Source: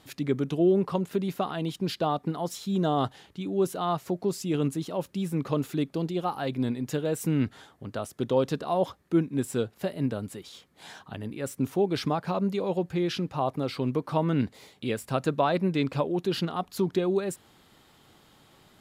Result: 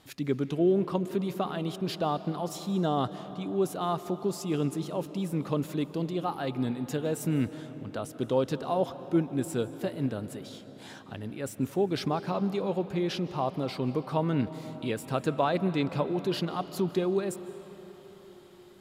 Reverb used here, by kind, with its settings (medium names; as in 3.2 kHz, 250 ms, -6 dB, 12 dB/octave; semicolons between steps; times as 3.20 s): algorithmic reverb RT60 4.6 s, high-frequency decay 0.55×, pre-delay 115 ms, DRR 12.5 dB; trim -2 dB